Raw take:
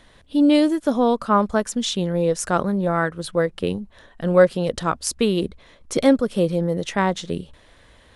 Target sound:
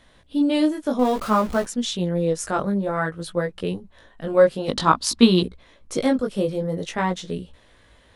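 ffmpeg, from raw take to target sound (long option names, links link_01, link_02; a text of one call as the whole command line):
ffmpeg -i in.wav -filter_complex "[0:a]asettb=1/sr,asplit=3[link_01][link_02][link_03];[link_01]atrim=end=0.994[link_04];[link_02]atrim=start=0.99:end=1.65,asetpts=PTS-STARTPTS,afade=type=in:duration=0.004:curve=qsin,afade=type=out:start_time=0.656:duration=0.004:curve=qsin,aeval=exprs='val(0)+0.5*0.0501*sgn(val(0))':channel_layout=same[link_05];[link_03]atrim=start=1.646[link_06];[link_04][link_05]acrossfade=duration=0.004:curve1=hsin:curve2=qsin[link_07];[link_07][link_06]acrossfade=duration=0.004:curve1=qsin:curve2=hsin,flanger=delay=16.5:depth=3.7:speed=0.55,asettb=1/sr,asplit=3[link_08][link_09][link_10];[link_08]atrim=end=4.684[link_11];[link_09]atrim=start=4.68:end=5.43,asetpts=PTS-STARTPTS,afade=type=in:duration=0.004:curve=qsin,afade=type=out:start_time=0.746:duration=0.004:curve=qsin,equalizer=frequency=250:width_type=o:width=1:gain=12,equalizer=frequency=500:width_type=o:width=1:gain=-4,equalizer=frequency=1000:width_type=o:width=1:gain=11,equalizer=frequency=4000:width_type=o:width=1:gain=12[link_12];[link_10]atrim=start=5.426[link_13];[link_11][link_12]acrossfade=duration=0.004:curve1=hsin:curve2=qsin[link_14];[link_14][link_13]acrossfade=duration=0.004:curve1=qsin:curve2=hsin" out.wav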